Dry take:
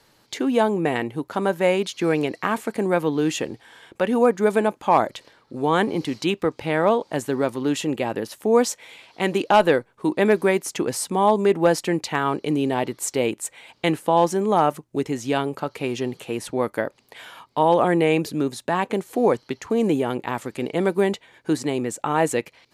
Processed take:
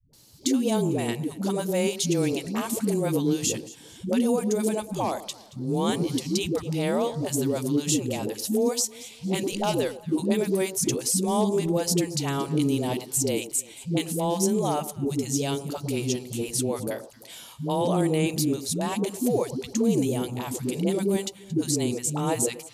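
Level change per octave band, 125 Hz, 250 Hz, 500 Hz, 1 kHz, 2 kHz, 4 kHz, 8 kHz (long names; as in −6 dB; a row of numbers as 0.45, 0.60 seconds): +1.5, −1.5, −6.0, −10.0, −10.0, 0.0, +6.0 decibels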